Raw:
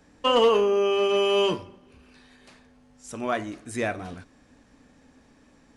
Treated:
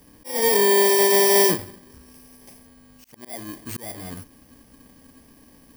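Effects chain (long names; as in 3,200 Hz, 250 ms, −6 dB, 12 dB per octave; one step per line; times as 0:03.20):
samples in bit-reversed order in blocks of 32 samples
volume swells 459 ms
level +5.5 dB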